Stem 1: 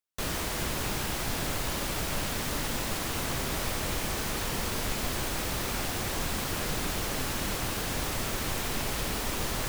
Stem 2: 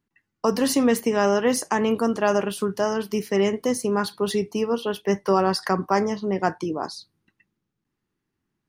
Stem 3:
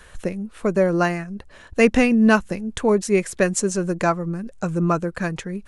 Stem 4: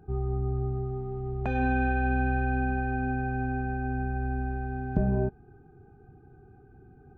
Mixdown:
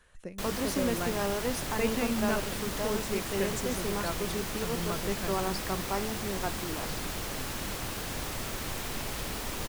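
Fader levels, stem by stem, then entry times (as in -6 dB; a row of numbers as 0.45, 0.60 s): -4.0 dB, -12.0 dB, -16.0 dB, off; 0.20 s, 0.00 s, 0.00 s, off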